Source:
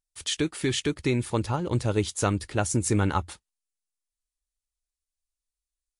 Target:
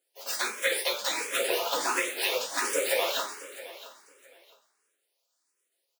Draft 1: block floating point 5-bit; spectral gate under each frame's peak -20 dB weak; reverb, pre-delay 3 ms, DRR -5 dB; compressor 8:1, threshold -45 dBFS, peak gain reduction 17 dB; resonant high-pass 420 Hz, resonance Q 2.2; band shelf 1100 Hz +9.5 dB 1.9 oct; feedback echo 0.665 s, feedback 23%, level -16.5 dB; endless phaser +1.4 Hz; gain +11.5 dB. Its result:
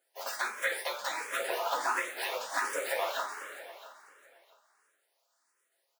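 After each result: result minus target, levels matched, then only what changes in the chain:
compressor: peak gain reduction +10 dB; 1000 Hz band +5.5 dB
change: compressor 8:1, threshold -33.5 dBFS, peak gain reduction 7 dB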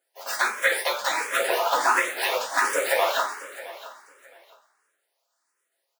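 1000 Hz band +5.0 dB
remove: band shelf 1100 Hz +9.5 dB 1.9 oct

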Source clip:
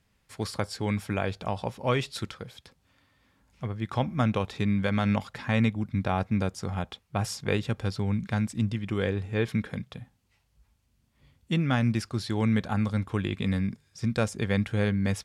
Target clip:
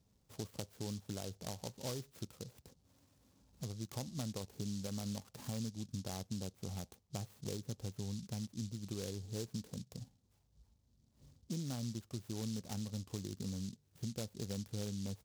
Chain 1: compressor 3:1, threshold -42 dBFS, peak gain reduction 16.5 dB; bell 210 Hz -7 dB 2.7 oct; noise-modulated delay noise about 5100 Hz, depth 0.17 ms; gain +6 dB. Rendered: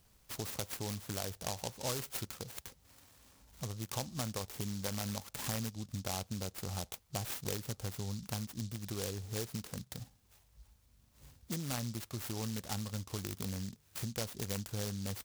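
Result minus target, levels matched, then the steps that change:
250 Hz band -3.5 dB
add after compressor: band-pass 210 Hz, Q 0.61

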